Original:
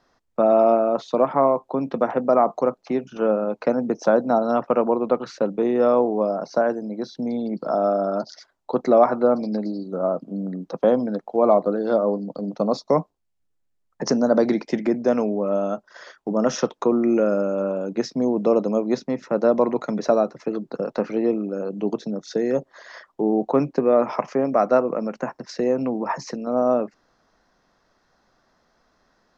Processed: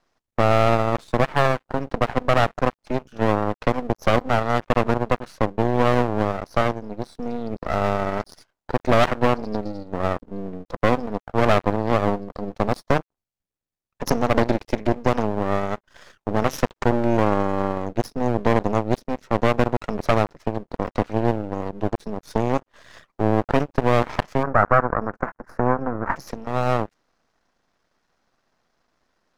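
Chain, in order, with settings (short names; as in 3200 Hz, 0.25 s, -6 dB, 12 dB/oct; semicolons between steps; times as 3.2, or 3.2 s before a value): added harmonics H 4 -29 dB, 6 -9 dB, 7 -43 dB, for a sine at -3.5 dBFS; half-wave rectifier; 24.43–26.16 resonant high shelf 2200 Hz -14 dB, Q 3; gain -1.5 dB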